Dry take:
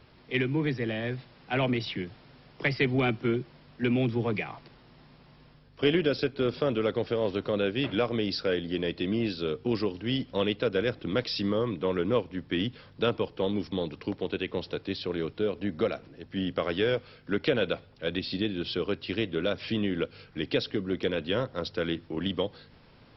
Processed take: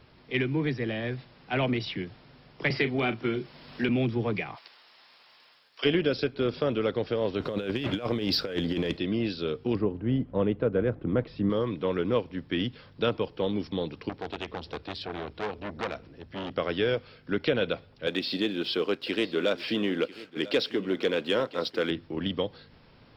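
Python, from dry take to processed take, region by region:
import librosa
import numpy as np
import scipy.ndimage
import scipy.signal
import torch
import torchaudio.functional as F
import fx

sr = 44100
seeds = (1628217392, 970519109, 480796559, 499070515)

y = fx.chain(x, sr, fx.low_shelf(hz=200.0, db=-6.5),
    fx.doubler(ms=36.0, db=-11.5),
    fx.band_squash(depth_pct=70), at=(2.7, 3.89))
y = fx.highpass(y, sr, hz=760.0, slope=12, at=(4.55, 5.84), fade=0.02)
y = fx.high_shelf(y, sr, hz=2000.0, db=9.5, at=(4.55, 5.84), fade=0.02)
y = fx.dmg_crackle(y, sr, seeds[0], per_s=320.0, level_db=-64.0, at=(4.55, 5.84), fade=0.02)
y = fx.chain(y, sr, fx.over_compress(threshold_db=-31.0, ratio=-0.5),
    fx.leveller(passes=1), at=(7.4, 8.97))
y = fx.chain(y, sr, fx.lowpass(hz=1300.0, slope=12),
    fx.low_shelf(hz=230.0, db=6.5), at=(9.75, 11.5))
y = fx.chain(y, sr, fx.peak_eq(hz=70.0, db=12.0, octaves=0.43),
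    fx.transformer_sat(knee_hz=2100.0), at=(14.09, 16.51))
y = fx.chain(y, sr, fx.highpass(hz=250.0, slope=12),
    fx.leveller(passes=1),
    fx.echo_single(ms=996, db=-17.5), at=(18.07, 21.91))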